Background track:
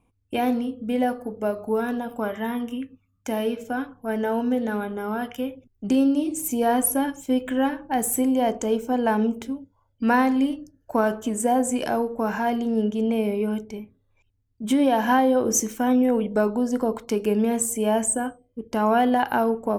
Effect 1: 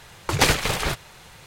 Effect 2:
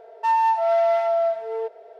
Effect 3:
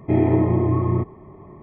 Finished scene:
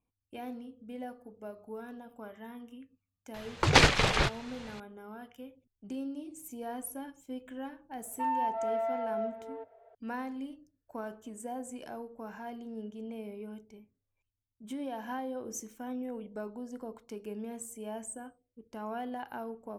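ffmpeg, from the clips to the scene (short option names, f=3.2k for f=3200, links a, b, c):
-filter_complex "[0:a]volume=-18.5dB[a];[1:a]lowpass=5.5k[b];[2:a]highpass=570,lowpass=2.2k[c];[b]atrim=end=1.46,asetpts=PTS-STARTPTS,volume=-1.5dB,afade=t=in:d=0.004:c=hsin,afade=t=out:st=1.456:d=0.004:c=hsin,adelay=3340[d];[c]atrim=end=1.99,asetpts=PTS-STARTPTS,volume=-11dB,afade=t=in:d=0.004:c=hsin,afade=t=out:st=1.986:d=0.004:c=hsin,adelay=7960[e];[a][d][e]amix=inputs=3:normalize=0"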